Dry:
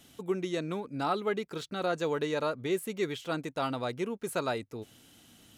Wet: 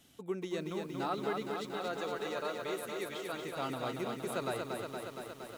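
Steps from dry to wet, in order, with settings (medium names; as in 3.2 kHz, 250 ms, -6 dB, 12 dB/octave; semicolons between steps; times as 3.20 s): 1.53–3.42 s: bass shelf 320 Hz -11 dB; bit-crushed delay 233 ms, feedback 80%, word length 9-bit, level -4 dB; trim -6 dB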